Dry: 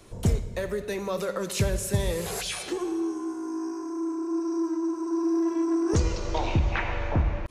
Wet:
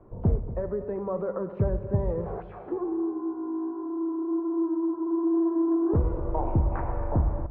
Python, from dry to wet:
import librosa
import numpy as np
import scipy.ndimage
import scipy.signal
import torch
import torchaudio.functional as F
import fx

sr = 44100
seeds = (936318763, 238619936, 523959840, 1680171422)

y = scipy.signal.sosfilt(scipy.signal.butter(4, 1100.0, 'lowpass', fs=sr, output='sos'), x)
y = y + 10.0 ** (-15.0 / 20.0) * np.pad(y, (int(238 * sr / 1000.0), 0))[:len(y)]